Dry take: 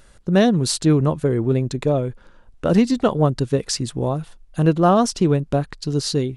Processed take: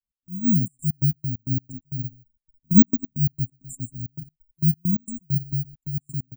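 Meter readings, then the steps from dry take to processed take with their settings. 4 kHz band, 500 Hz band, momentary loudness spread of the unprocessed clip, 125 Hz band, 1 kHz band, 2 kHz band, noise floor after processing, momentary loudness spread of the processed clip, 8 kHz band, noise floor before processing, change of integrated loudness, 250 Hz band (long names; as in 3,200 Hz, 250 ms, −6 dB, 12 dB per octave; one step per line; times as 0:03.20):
below −40 dB, below −30 dB, 8 LU, −4.0 dB, below −40 dB, below −40 dB, below −85 dBFS, 17 LU, −15.0 dB, −50 dBFS, −4.0 dB, −4.5 dB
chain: fade in at the beginning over 0.59 s
noise reduction from a noise print of the clip's start 11 dB
brick-wall band-stop 260–7,000 Hz
low-shelf EQ 110 Hz −8 dB
slap from a distant wall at 21 metres, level −10 dB
bad sample-rate conversion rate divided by 2×, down filtered, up zero stuff
gate pattern "x.xxxx.x.x.x.x." 133 BPM −24 dB
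phaser swept by the level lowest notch 480 Hz, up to 3,400 Hz, full sweep at −26 dBFS
high-shelf EQ 7,900 Hz −7 dB
transient designer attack −2 dB, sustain −6 dB
expander for the loud parts 1.5 to 1, over −40 dBFS
level +6 dB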